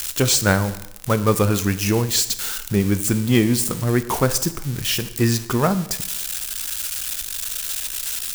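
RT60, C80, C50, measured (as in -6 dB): 0.85 s, 16.0 dB, 14.0 dB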